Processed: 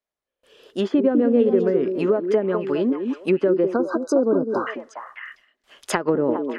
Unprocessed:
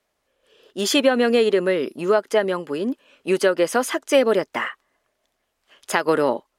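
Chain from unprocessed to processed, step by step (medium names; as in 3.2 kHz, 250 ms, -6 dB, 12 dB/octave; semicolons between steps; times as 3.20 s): dynamic bell 710 Hz, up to -7 dB, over -30 dBFS, Q 0.99; low-pass that closes with the level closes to 630 Hz, closed at -18.5 dBFS; gate with hold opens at -57 dBFS; repeats whose band climbs or falls 204 ms, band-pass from 310 Hz, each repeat 1.4 oct, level -3 dB; spectral selection erased 3.73–4.67 s, 1.6–3.8 kHz; trim +3.5 dB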